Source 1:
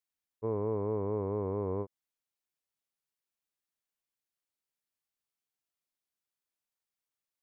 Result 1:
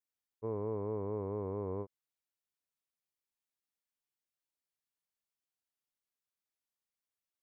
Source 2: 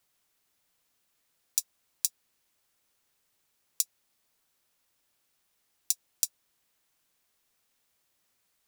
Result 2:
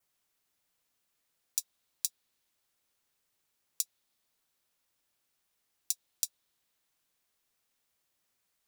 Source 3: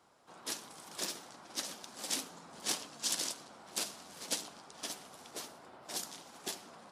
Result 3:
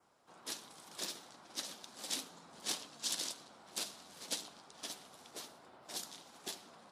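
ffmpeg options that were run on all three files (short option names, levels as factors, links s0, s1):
-af "adynamicequalizer=threshold=0.00224:dfrequency=3800:dqfactor=2.8:tfrequency=3800:tqfactor=2.8:attack=5:release=100:ratio=0.375:range=2.5:mode=boostabove:tftype=bell,volume=0.596"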